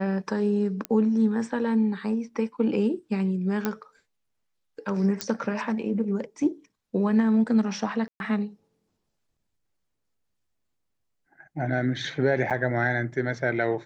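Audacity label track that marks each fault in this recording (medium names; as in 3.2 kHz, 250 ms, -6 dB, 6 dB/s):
0.850000	0.850000	pop -14 dBFS
3.650000	3.650000	pop -12 dBFS
5.210000	5.210000	pop -11 dBFS
8.080000	8.200000	dropout 121 ms
12.500000	12.510000	dropout 7.6 ms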